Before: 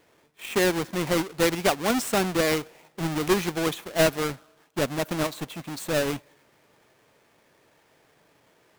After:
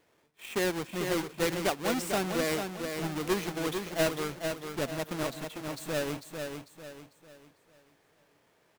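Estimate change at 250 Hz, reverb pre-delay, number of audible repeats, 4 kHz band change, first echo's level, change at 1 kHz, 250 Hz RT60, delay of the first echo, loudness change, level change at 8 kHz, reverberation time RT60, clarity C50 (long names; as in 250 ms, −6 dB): −6.0 dB, no reverb audible, 4, −6.0 dB, −6.0 dB, −6.0 dB, no reverb audible, 447 ms, −6.5 dB, −6.0 dB, no reverb audible, no reverb audible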